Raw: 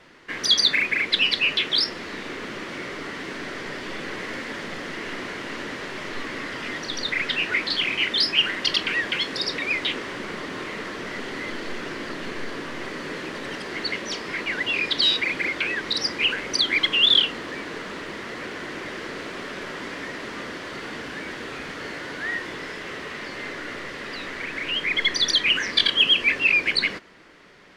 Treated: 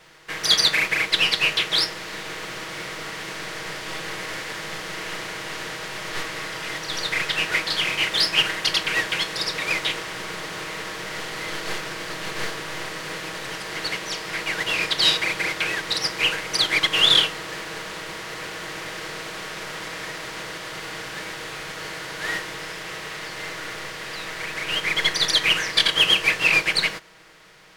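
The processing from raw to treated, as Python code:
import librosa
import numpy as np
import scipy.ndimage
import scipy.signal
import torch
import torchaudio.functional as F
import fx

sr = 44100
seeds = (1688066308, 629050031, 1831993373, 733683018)

y = fx.spec_flatten(x, sr, power=0.66)
y = fx.peak_eq(y, sr, hz=260.0, db=-12.5, octaves=0.45)
y = y + 0.52 * np.pad(y, (int(6.3 * sr / 1000.0), 0))[:len(y)]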